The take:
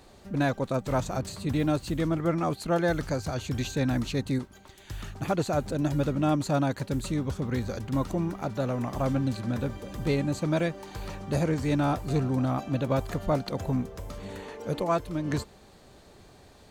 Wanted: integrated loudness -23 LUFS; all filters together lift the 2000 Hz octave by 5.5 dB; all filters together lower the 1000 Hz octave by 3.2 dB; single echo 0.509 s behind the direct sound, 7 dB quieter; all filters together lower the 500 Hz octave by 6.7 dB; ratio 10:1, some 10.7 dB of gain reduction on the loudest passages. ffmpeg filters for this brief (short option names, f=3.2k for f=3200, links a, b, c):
-af "equalizer=f=500:t=o:g=-8,equalizer=f=1k:t=o:g=-4,equalizer=f=2k:t=o:g=9,acompressor=threshold=-34dB:ratio=10,aecho=1:1:509:0.447,volume=15.5dB"